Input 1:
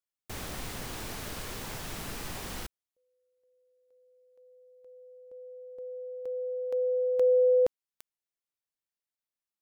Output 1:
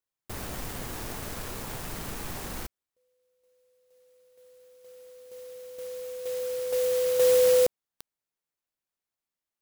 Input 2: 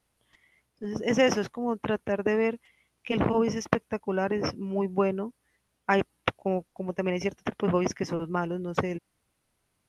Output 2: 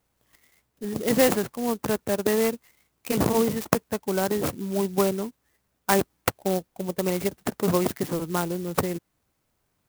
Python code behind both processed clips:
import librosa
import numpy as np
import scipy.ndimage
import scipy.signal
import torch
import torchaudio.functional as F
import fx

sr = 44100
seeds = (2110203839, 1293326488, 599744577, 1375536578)

y = fx.clock_jitter(x, sr, seeds[0], jitter_ms=0.078)
y = F.gain(torch.from_numpy(y), 2.5).numpy()